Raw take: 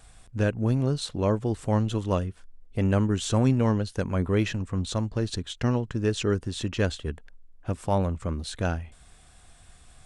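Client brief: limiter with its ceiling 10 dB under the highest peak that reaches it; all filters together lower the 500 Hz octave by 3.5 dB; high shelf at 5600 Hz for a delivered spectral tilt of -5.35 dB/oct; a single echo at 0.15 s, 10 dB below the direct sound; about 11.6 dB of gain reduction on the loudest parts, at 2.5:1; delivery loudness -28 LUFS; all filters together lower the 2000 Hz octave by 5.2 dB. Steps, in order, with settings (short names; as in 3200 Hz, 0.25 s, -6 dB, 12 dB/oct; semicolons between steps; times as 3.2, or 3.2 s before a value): bell 500 Hz -4 dB; bell 2000 Hz -6.5 dB; high shelf 5600 Hz -4 dB; compressor 2.5:1, threshold -37 dBFS; limiter -33 dBFS; echo 0.15 s -10 dB; gain +15 dB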